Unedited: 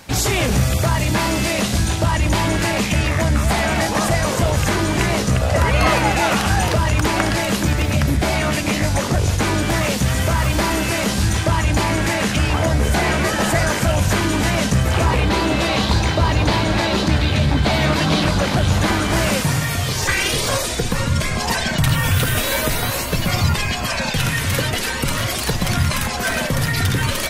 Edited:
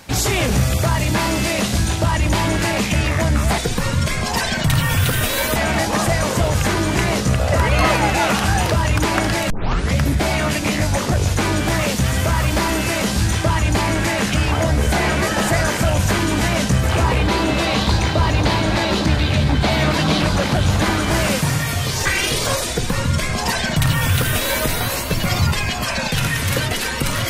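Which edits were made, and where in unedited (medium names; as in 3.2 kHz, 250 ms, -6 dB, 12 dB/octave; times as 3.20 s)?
7.52 s: tape start 0.49 s
20.72–22.70 s: copy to 3.58 s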